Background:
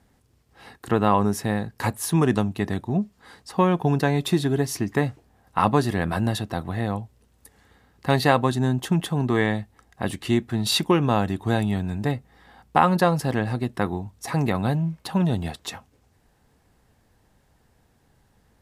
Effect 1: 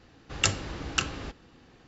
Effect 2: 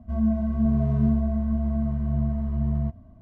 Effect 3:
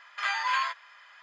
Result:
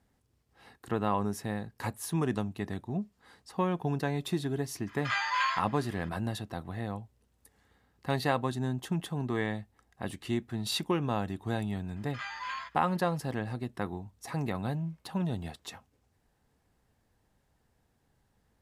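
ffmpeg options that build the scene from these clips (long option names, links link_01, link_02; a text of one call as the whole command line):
ffmpeg -i bed.wav -i cue0.wav -i cue1.wav -i cue2.wav -filter_complex "[3:a]asplit=2[link_01][link_02];[0:a]volume=-10dB[link_03];[link_01]atrim=end=1.22,asetpts=PTS-STARTPTS,volume=-1.5dB,afade=type=in:duration=0.004:curve=hsin,afade=type=out:start_time=1.216:duration=0.004:curve=hsin,adelay=4870[link_04];[link_02]atrim=end=1.22,asetpts=PTS-STARTPTS,volume=-10.5dB,afade=type=in:duration=0.004:curve=hsin,afade=type=out:start_time=1.216:duration=0.004:curve=hsin,adelay=11960[link_05];[link_03][link_04][link_05]amix=inputs=3:normalize=0" out.wav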